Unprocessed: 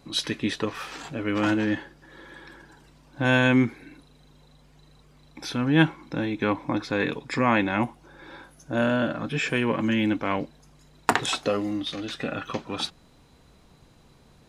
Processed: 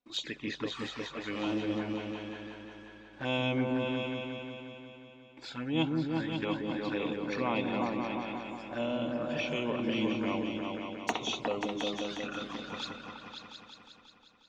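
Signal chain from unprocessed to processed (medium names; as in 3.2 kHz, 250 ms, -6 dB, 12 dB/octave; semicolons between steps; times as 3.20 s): knee-point frequency compression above 3.4 kHz 1.5:1; gate with hold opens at -44 dBFS; bass shelf 280 Hz -11.5 dB; touch-sensitive flanger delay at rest 4.1 ms, full sweep at -25.5 dBFS; on a send: delay with an opening low-pass 179 ms, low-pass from 400 Hz, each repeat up 2 oct, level 0 dB; on the sum: trim -5 dB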